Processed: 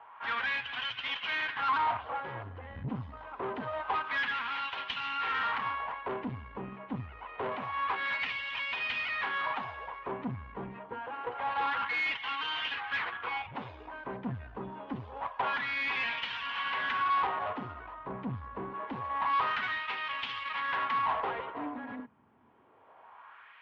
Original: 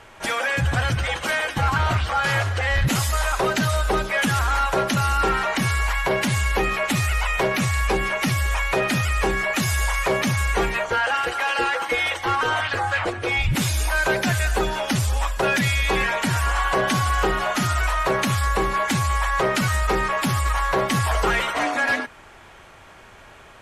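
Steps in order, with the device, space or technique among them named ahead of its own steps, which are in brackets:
wah-wah guitar rig (LFO wah 0.26 Hz 200–3,100 Hz, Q 2.1; tube saturation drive 28 dB, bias 0.65; loudspeaker in its box 87–3,600 Hz, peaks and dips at 170 Hz −7 dB, 350 Hz −8 dB, 580 Hz −6 dB, 1,000 Hz +8 dB, 3,100 Hz +3 dB)

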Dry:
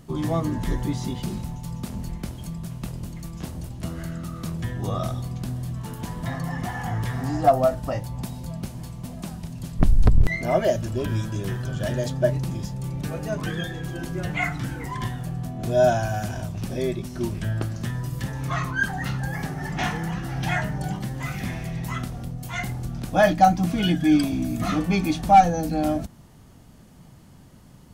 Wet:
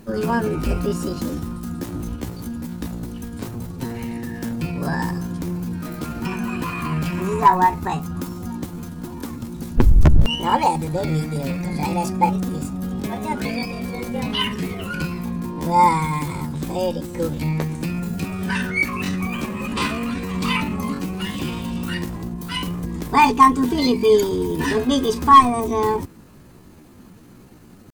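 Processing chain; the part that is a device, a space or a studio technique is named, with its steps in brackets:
chipmunk voice (pitch shifter +6 semitones)
level +3.5 dB

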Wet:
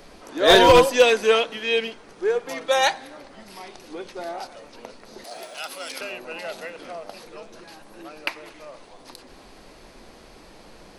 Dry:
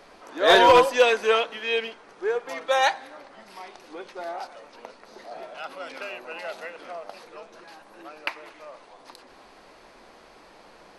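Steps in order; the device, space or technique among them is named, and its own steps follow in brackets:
smiley-face EQ (low-shelf EQ 180 Hz +8.5 dB; parametric band 1,100 Hz −6.5 dB 2.4 octaves; high-shelf EQ 9,500 Hz +5.5 dB)
0:05.24–0:06.01: RIAA equalisation recording
level +5.5 dB

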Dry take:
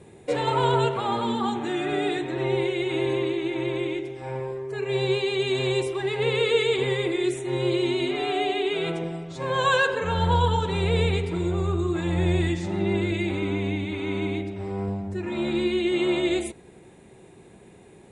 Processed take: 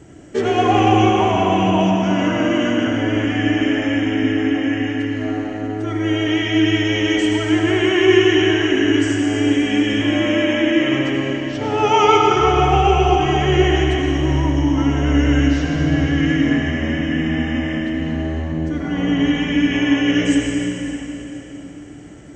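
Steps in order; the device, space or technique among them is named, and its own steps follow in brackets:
slowed and reverbed (speed change −19%; convolution reverb RT60 3.5 s, pre-delay 72 ms, DRR −1 dB)
level +5.5 dB

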